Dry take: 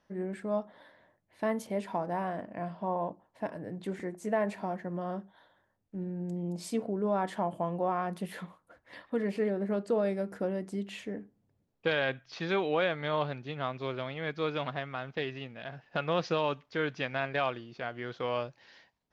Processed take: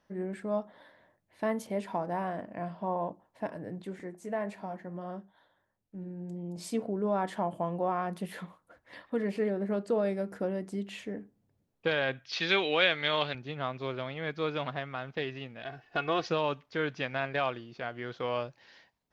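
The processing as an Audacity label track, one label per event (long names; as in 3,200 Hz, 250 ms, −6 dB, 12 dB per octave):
3.820000	6.570000	flanger 1.5 Hz, delay 5.2 ms, depth 2.8 ms, regen −79%
12.250000	13.350000	meter weighting curve D
15.620000	16.280000	comb filter 2.7 ms, depth 63%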